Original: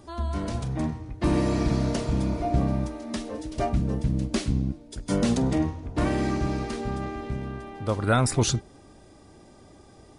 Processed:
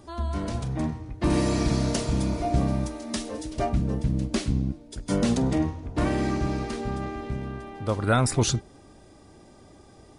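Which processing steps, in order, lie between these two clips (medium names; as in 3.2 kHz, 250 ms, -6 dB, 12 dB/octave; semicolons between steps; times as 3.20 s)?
1.30–3.52 s: treble shelf 3.9 kHz +9 dB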